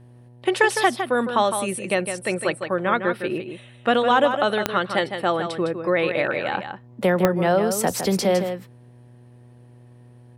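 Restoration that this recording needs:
click removal
hum removal 121.6 Hz, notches 8
echo removal 158 ms −8 dB

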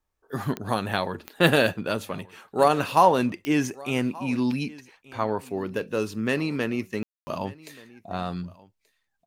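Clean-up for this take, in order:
click removal
ambience match 0:07.03–0:07.27
echo removal 1,180 ms −22 dB

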